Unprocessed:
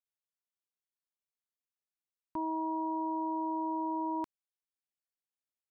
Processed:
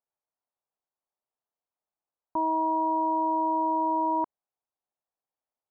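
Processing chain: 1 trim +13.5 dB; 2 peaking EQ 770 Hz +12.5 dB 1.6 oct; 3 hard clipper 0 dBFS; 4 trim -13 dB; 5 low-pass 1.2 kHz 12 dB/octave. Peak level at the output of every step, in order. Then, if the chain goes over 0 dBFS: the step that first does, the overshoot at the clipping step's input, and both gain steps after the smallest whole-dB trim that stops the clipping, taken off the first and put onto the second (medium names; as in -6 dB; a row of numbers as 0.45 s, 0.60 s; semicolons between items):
-15.0 dBFS, -5.0 dBFS, -5.0 dBFS, -18.0 dBFS, -19.0 dBFS; nothing clips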